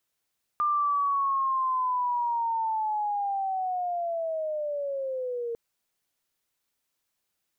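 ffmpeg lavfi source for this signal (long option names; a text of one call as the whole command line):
ffmpeg -f lavfi -i "aevalsrc='pow(10,(-22-7*t/4.95)/20)*sin(2*PI*(1200*t-740*t*t/(2*4.95)))':duration=4.95:sample_rate=44100" out.wav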